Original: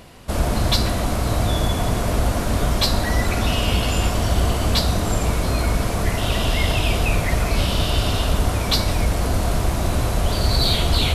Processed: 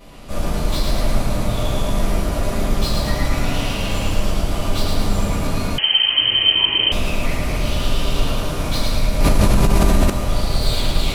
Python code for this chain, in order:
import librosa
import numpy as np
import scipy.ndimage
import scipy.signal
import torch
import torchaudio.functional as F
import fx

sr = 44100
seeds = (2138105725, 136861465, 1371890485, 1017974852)

p1 = 10.0 ** (-21.5 / 20.0) * (np.abs((x / 10.0 ** (-21.5 / 20.0) + 3.0) % 4.0 - 2.0) - 1.0)
p2 = x + (p1 * 10.0 ** (-7.0 / 20.0))
p3 = fx.vibrato(p2, sr, rate_hz=5.4, depth_cents=31.0)
p4 = 10.0 ** (-18.5 / 20.0) * np.tanh(p3 / 10.0 ** (-18.5 / 20.0))
p5 = fx.echo_feedback(p4, sr, ms=110, feedback_pct=58, wet_db=-3)
p6 = fx.room_shoebox(p5, sr, seeds[0], volume_m3=58.0, walls='mixed', distance_m=1.9)
p7 = fx.freq_invert(p6, sr, carrier_hz=3100, at=(5.78, 6.92))
p8 = fx.env_flatten(p7, sr, amount_pct=100, at=(9.2, 10.1))
y = p8 * 10.0 ** (-11.5 / 20.0)